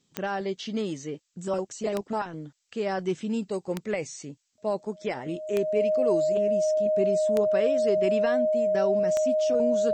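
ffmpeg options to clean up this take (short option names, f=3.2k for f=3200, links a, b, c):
-af "adeclick=t=4,bandreject=f=620:w=30,agate=range=-21dB:threshold=-48dB"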